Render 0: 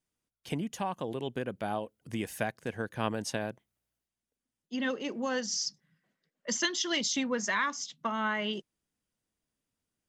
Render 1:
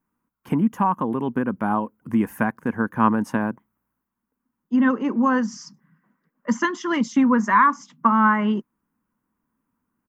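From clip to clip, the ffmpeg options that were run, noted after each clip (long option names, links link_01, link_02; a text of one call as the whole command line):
ffmpeg -i in.wav -af "firequalizer=gain_entry='entry(110,0);entry(230,12);entry(370,2);entry(660,-3);entry(980,13);entry(1900,-1);entry(3800,-19);entry(5500,-14);entry(9300,-10);entry(14000,2)':delay=0.05:min_phase=1,volume=6dB" out.wav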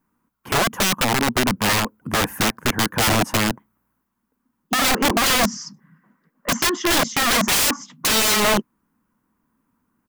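ffmpeg -i in.wav -af "aeval=exprs='(mod(9.44*val(0)+1,2)-1)/9.44':channel_layout=same,volume=6.5dB" out.wav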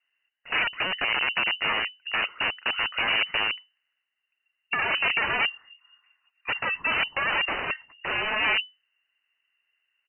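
ffmpeg -i in.wav -af "lowpass=frequency=2600:width_type=q:width=0.5098,lowpass=frequency=2600:width_type=q:width=0.6013,lowpass=frequency=2600:width_type=q:width=0.9,lowpass=frequency=2600:width_type=q:width=2.563,afreqshift=-3000,volume=-5.5dB" out.wav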